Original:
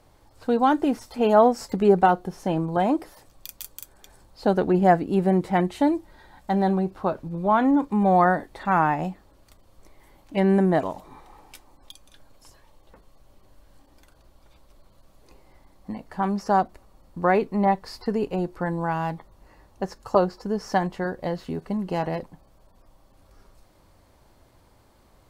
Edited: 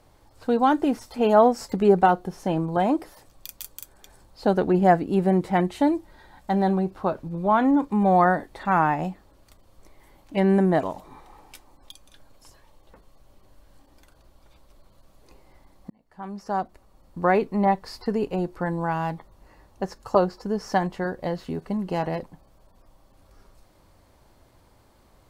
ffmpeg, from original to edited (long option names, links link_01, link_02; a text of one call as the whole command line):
ffmpeg -i in.wav -filter_complex "[0:a]asplit=2[link_01][link_02];[link_01]atrim=end=15.9,asetpts=PTS-STARTPTS,afade=type=out:start_time=15.896:duration=0.004:curve=hsin[link_03];[link_02]atrim=start=15.9,asetpts=PTS-STARTPTS,afade=type=in:duration=1.33[link_04];[link_03][link_04]concat=n=2:v=0:a=1" out.wav